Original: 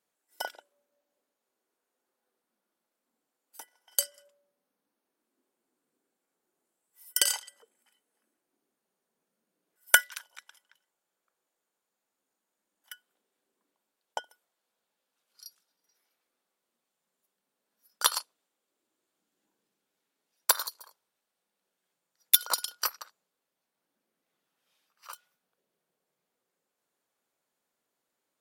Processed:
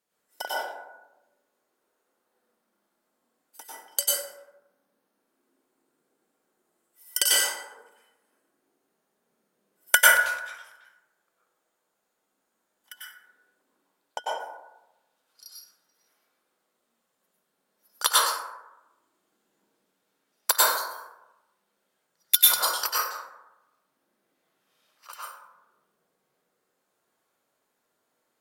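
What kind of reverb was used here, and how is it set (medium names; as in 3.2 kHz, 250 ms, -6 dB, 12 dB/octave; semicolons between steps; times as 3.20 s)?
plate-style reverb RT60 0.98 s, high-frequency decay 0.4×, pre-delay 85 ms, DRR -7.5 dB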